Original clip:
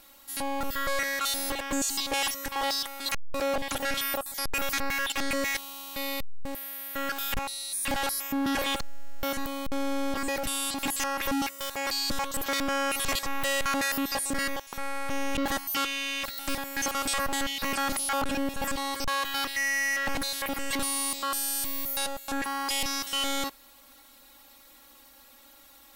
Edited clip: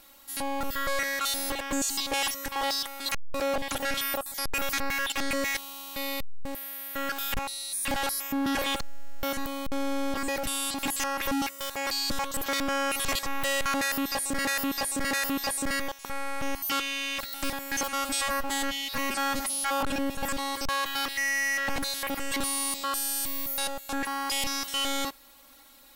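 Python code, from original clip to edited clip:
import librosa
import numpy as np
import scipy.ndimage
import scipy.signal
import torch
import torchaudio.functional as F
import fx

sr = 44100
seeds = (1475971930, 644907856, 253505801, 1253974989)

y = fx.edit(x, sr, fx.repeat(start_s=13.79, length_s=0.66, count=3),
    fx.cut(start_s=15.23, length_s=0.37),
    fx.stretch_span(start_s=16.88, length_s=1.32, factor=1.5), tone=tone)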